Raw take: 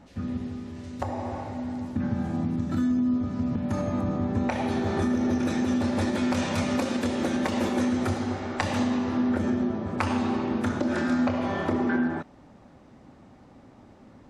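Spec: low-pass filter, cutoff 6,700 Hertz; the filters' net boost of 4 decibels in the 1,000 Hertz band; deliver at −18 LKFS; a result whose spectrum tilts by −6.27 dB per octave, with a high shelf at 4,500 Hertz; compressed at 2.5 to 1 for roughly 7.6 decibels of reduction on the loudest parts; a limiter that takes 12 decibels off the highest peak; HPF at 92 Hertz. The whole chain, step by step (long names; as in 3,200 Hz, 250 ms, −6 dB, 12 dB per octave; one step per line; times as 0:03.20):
high-pass filter 92 Hz
low-pass filter 6,700 Hz
parametric band 1,000 Hz +5.5 dB
high-shelf EQ 4,500 Hz −6.5 dB
downward compressor 2.5 to 1, threshold −32 dBFS
level +18 dB
brickwall limiter −9.5 dBFS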